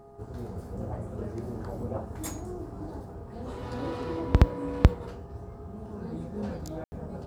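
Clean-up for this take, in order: de-hum 410.2 Hz, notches 3; band-stop 680 Hz, Q 30; room tone fill 6.84–6.92 s

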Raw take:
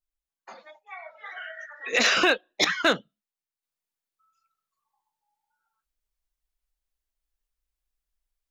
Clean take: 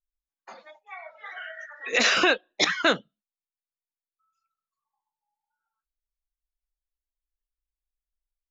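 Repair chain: clip repair -12 dBFS; trim 0 dB, from 3.63 s -5.5 dB

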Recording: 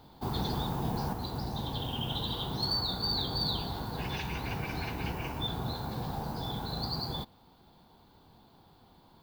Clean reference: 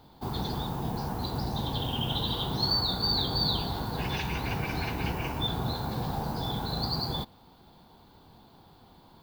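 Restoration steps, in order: clip repair -23.5 dBFS; gain correction +4 dB, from 1.13 s

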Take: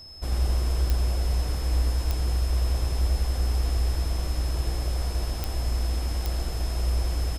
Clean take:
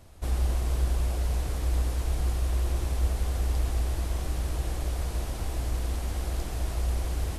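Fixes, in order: de-click; band-stop 5.2 kHz, Q 30; inverse comb 84 ms -4.5 dB

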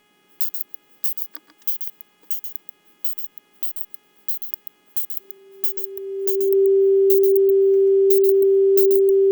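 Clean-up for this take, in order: clip repair -4.5 dBFS; de-hum 416.8 Hz, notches 8; band-stop 390 Hz, Q 30; inverse comb 134 ms -7 dB

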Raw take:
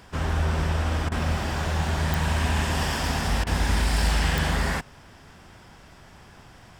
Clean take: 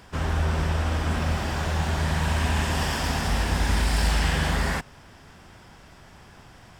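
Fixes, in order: de-click; interpolate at 1.09/3.44 s, 26 ms

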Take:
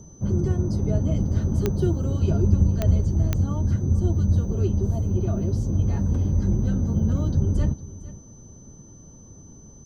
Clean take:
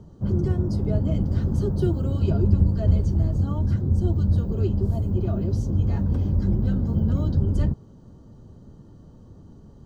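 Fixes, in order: de-click; band-stop 6.1 kHz, Q 30; inverse comb 457 ms -17.5 dB

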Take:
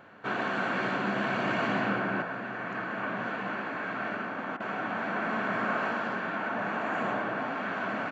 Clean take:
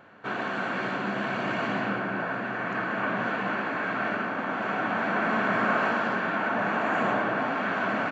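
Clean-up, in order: interpolate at 4.57 s, 30 ms; gain correction +5 dB, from 2.22 s

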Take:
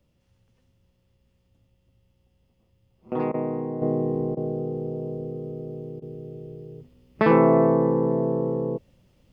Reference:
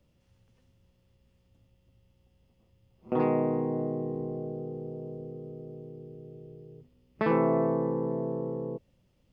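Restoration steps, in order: interpolate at 3.32/4.35/6.00 s, 19 ms; trim 0 dB, from 3.82 s -8 dB

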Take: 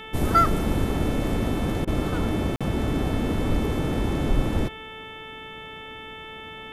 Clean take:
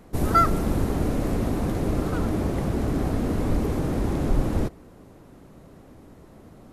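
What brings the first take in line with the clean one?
de-hum 439.6 Hz, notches 8; interpolate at 2.56 s, 46 ms; interpolate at 1.85 s, 23 ms

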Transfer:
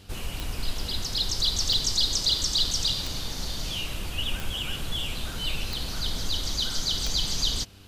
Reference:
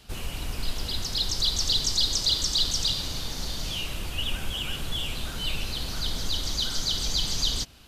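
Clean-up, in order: de-click; de-hum 98.2 Hz, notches 5

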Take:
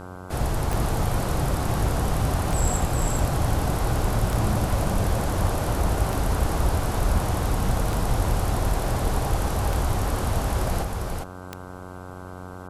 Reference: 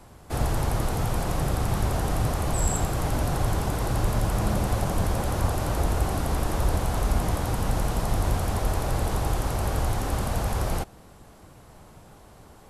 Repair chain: de-click; de-hum 91.6 Hz, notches 17; inverse comb 401 ms -3.5 dB

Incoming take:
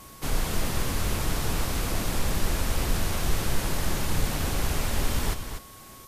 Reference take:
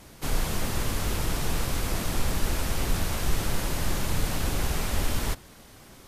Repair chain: band-stop 1.1 kHz, Q 30; noise reduction 6 dB, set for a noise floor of -46 dBFS; inverse comb 242 ms -8 dB

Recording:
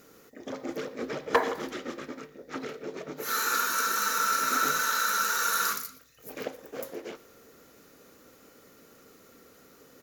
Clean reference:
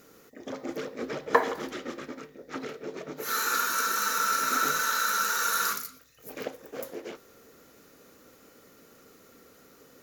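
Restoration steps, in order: clip repair -14 dBFS; inverse comb 118 ms -21.5 dB

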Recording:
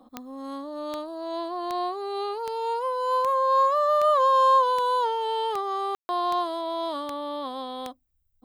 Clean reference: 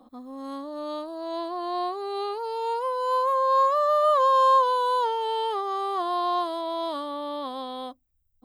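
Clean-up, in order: de-click; room tone fill 5.95–6.09 s

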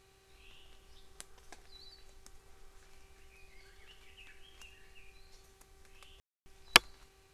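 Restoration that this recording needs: de-hum 386.4 Hz, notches 6; room tone fill 6.20–6.46 s

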